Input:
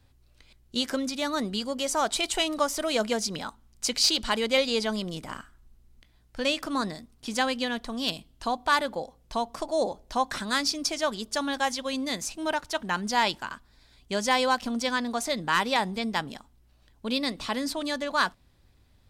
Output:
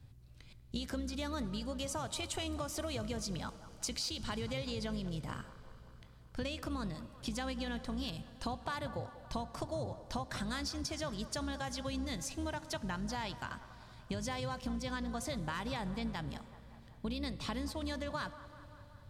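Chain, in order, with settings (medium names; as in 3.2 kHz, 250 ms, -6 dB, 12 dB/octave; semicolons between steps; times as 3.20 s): octave divider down 2 oct, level -3 dB; peaking EQ 120 Hz +13.5 dB 1.4 oct; peak limiter -15.5 dBFS, peak gain reduction 6 dB; compression, threshold -33 dBFS, peak gain reduction 12.5 dB; on a send: feedback echo behind a band-pass 191 ms, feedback 66%, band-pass 800 Hz, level -14 dB; on the sum: Schroeder reverb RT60 3.8 s, combs from 27 ms, DRR 16.5 dB; trim -3 dB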